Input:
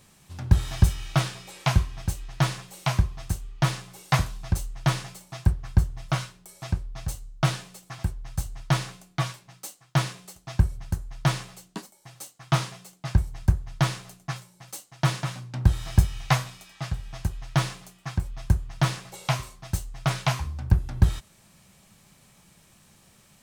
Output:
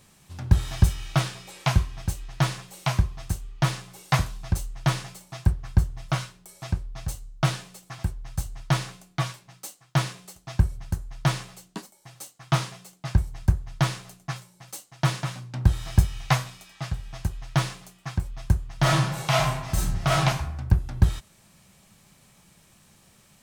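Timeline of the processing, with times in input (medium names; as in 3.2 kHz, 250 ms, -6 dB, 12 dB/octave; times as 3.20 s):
18.77–20.20 s: reverb throw, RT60 0.92 s, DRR -6 dB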